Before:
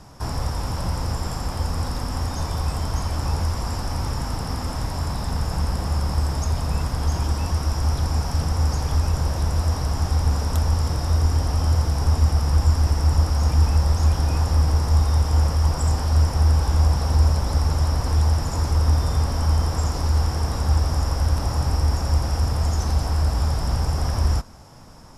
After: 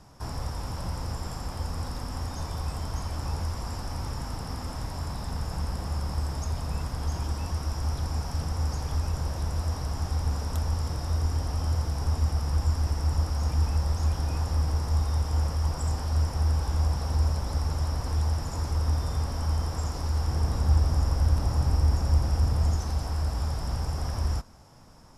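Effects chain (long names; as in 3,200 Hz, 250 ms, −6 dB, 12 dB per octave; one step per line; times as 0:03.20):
0:20.28–0:22.77: low-shelf EQ 390 Hz +5.5 dB
level −7.5 dB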